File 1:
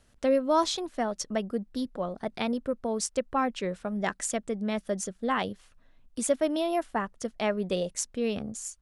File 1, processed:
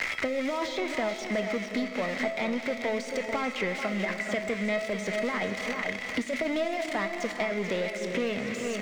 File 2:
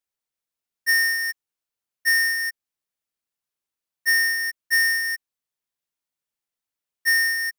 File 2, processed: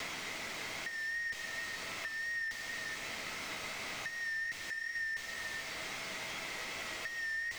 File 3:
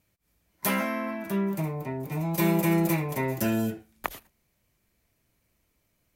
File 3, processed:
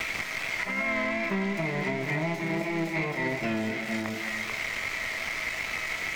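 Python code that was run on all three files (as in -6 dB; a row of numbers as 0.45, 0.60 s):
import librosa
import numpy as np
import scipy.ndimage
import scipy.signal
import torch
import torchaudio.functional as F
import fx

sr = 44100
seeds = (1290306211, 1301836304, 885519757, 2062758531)

y = x + 0.5 * 10.0 ** (-17.0 / 20.0) * np.diff(np.sign(x), prepend=np.sign(x[:1]))
y = fx.highpass(y, sr, hz=210.0, slope=6)
y = fx.peak_eq(y, sr, hz=2100.0, db=14.5, octaves=0.26)
y = fx.over_compress(y, sr, threshold_db=-26.0, ratio=-0.5)
y = fx.leveller(y, sr, passes=3)
y = fx.comb_fb(y, sr, f0_hz=650.0, decay_s=0.46, harmonics='all', damping=0.0, mix_pct=80)
y = fx.vibrato(y, sr, rate_hz=2.7, depth_cents=35.0)
y = fx.air_absorb(y, sr, metres=160.0)
y = y + 10.0 ** (-10.0 / 20.0) * np.pad(y, (int(438 * sr / 1000.0), 0))[:len(y)]
y = fx.rev_gated(y, sr, seeds[0], gate_ms=430, shape='flat', drr_db=9.5)
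y = fx.band_squash(y, sr, depth_pct=100)
y = F.gain(torch.from_numpy(y), 3.0).numpy()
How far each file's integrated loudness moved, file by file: 0.0, -17.5, -1.0 LU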